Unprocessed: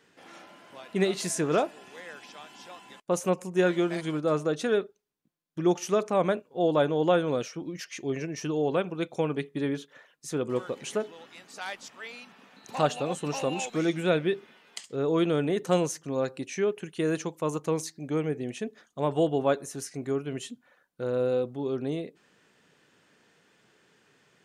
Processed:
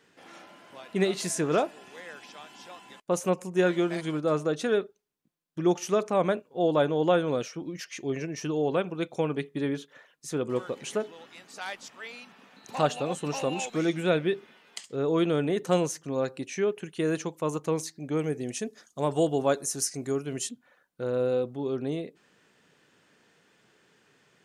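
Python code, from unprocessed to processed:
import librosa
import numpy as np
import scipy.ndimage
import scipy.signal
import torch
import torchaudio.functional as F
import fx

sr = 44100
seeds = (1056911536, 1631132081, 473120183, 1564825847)

y = fx.band_shelf(x, sr, hz=7500.0, db=10.5, octaves=1.7, at=(18.19, 20.49))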